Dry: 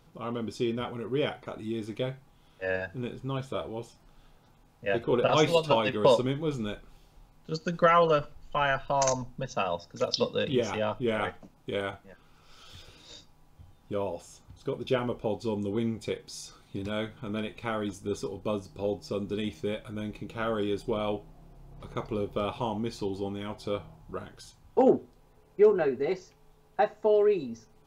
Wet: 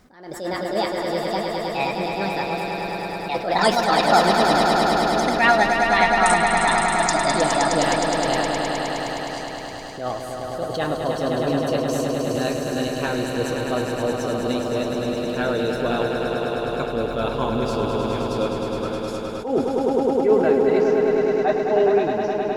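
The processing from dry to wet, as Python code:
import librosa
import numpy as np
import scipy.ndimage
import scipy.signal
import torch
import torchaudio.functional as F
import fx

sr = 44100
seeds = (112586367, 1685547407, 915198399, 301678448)

y = fx.speed_glide(x, sr, from_pct=152, to_pct=95)
y = fx.echo_swell(y, sr, ms=104, loudest=5, wet_db=-7.0)
y = fx.attack_slew(y, sr, db_per_s=100.0)
y = F.gain(torch.from_numpy(y), 5.5).numpy()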